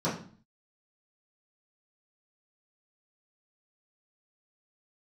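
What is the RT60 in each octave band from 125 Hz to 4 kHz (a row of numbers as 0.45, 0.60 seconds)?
0.60, 0.60, 0.45, 0.45, 0.40, 0.40 seconds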